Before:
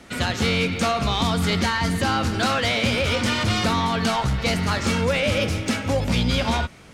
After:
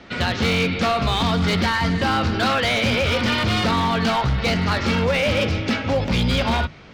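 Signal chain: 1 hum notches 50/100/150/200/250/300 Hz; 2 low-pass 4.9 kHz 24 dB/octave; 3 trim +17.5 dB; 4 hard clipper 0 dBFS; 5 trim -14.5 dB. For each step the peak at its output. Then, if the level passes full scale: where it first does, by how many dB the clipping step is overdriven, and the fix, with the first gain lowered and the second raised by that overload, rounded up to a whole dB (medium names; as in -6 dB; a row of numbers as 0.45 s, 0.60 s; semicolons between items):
-7.5 dBFS, -7.5 dBFS, +10.0 dBFS, 0.0 dBFS, -14.5 dBFS; step 3, 10.0 dB; step 3 +7.5 dB, step 5 -4.5 dB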